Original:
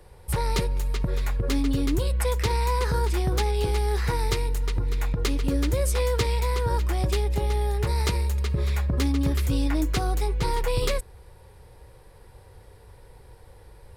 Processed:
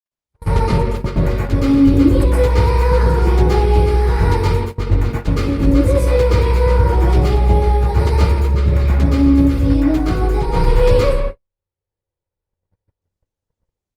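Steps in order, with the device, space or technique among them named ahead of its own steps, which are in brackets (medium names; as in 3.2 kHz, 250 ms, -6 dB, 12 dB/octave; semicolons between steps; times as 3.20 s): treble shelf 2.3 kHz -10.5 dB; speakerphone in a meeting room (reverberation RT60 0.85 s, pre-delay 115 ms, DRR -8 dB; speakerphone echo 170 ms, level -10 dB; level rider gain up to 13 dB; gate -17 dBFS, range -56 dB; trim -1 dB; Opus 32 kbps 48 kHz)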